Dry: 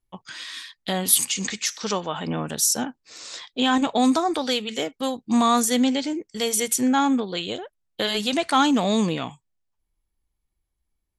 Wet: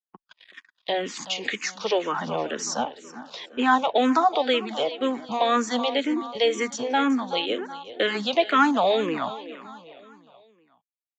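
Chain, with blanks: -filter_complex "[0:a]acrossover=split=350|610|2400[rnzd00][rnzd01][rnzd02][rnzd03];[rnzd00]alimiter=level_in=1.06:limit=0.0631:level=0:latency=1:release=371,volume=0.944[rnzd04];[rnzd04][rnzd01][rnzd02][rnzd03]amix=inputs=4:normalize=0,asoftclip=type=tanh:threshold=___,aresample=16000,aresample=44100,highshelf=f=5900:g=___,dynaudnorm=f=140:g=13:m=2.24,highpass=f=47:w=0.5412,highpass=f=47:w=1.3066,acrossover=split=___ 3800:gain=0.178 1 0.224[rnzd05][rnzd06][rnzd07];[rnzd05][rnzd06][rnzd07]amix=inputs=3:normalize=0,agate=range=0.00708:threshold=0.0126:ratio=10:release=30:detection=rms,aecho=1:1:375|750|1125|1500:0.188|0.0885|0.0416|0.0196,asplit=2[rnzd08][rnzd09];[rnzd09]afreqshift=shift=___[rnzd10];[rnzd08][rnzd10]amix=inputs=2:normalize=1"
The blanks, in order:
0.398, -6, 250, -2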